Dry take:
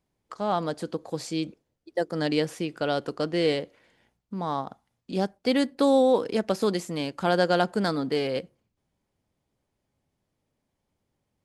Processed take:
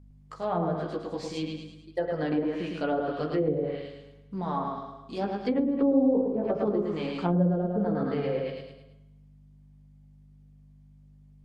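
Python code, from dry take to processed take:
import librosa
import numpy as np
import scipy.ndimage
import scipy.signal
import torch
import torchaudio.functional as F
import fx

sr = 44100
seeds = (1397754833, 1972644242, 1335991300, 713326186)

y = fx.chorus_voices(x, sr, voices=4, hz=0.21, base_ms=15, depth_ms=4.5, mix_pct=45)
y = fx.add_hum(y, sr, base_hz=50, snr_db=22)
y = fx.echo_feedback(y, sr, ms=107, feedback_pct=43, wet_db=-3.5)
y = fx.rev_spring(y, sr, rt60_s=1.0, pass_ms=(34, 57), chirp_ms=30, drr_db=9.0)
y = fx.env_lowpass_down(y, sr, base_hz=400.0, full_db=-20.0)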